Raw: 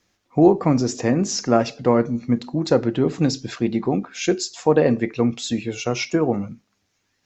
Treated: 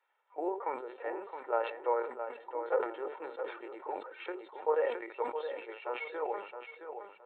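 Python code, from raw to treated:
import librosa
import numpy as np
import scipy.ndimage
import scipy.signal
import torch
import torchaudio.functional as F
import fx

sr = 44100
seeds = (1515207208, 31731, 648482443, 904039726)

p1 = fx.spec_quant(x, sr, step_db=15)
p2 = fx.quant_dither(p1, sr, seeds[0], bits=10, dither='triangular')
p3 = scipy.signal.sosfilt(scipy.signal.butter(2, 1400.0, 'lowpass', fs=sr, output='sos'), p2)
p4 = fx.lpc_vocoder(p3, sr, seeds[1], excitation='pitch_kept', order=8)
p5 = scipy.signal.sosfilt(scipy.signal.butter(4, 610.0, 'highpass', fs=sr, output='sos'), p4)
p6 = p5 + 0.66 * np.pad(p5, (int(2.2 * sr / 1000.0), 0))[:len(p5)]
p7 = p6 + fx.echo_feedback(p6, sr, ms=667, feedback_pct=25, wet_db=-8.5, dry=0)
p8 = fx.sustainer(p7, sr, db_per_s=100.0)
y = p8 * 10.0 ** (-6.5 / 20.0)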